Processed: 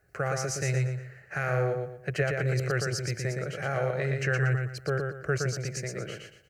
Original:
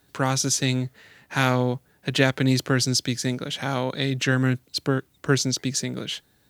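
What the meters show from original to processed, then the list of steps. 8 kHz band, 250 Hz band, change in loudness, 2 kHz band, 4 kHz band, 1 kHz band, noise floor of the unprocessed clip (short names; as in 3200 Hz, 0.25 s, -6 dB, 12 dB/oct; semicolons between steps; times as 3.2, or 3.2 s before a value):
-10.5 dB, -13.0 dB, -6.0 dB, -4.0 dB, -14.5 dB, -6.5 dB, -63 dBFS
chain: LPF 2500 Hz 6 dB/oct; limiter -12.5 dBFS, peak gain reduction 8 dB; fixed phaser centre 960 Hz, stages 6; on a send: feedback echo 0.117 s, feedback 31%, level -4 dB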